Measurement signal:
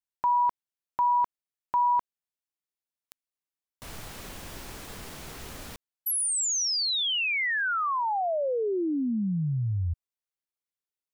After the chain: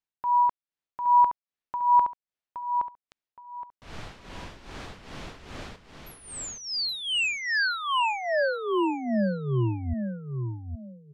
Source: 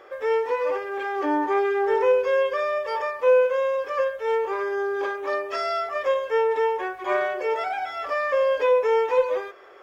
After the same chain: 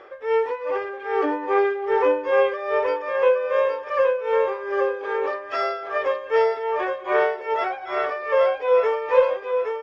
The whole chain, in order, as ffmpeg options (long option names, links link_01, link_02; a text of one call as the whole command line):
ffmpeg -i in.wav -af "lowpass=4200,tremolo=f=2.5:d=0.74,aecho=1:1:819|1638|2457:0.531|0.133|0.0332,volume=3.5dB" out.wav